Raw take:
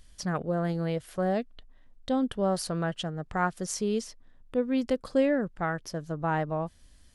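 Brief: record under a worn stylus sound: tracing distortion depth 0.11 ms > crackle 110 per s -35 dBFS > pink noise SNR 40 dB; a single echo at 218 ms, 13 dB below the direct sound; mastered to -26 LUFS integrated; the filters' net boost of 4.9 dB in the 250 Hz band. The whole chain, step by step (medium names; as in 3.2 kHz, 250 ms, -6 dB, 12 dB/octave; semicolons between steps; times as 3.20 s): peaking EQ 250 Hz +6 dB; delay 218 ms -13 dB; tracing distortion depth 0.11 ms; crackle 110 per s -35 dBFS; pink noise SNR 40 dB; trim +1 dB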